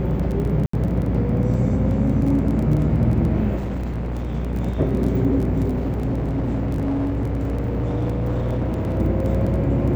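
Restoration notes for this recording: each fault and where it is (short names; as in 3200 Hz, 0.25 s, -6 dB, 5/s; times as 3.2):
buzz 60 Hz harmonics 39 -25 dBFS
crackle 16/s -26 dBFS
0.66–0.73 gap 74 ms
3.56–4.35 clipped -22.5 dBFS
5.68–8.99 clipped -19 dBFS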